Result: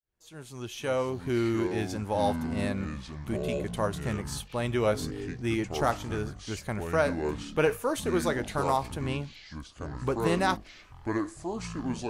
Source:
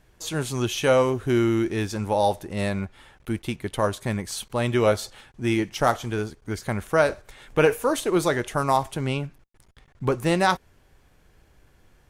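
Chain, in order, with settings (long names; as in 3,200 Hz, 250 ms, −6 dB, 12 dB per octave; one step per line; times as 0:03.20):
fade in at the beginning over 1.47 s
delay with pitch and tempo change per echo 355 ms, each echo −6 semitones, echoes 3, each echo −6 dB
level −6 dB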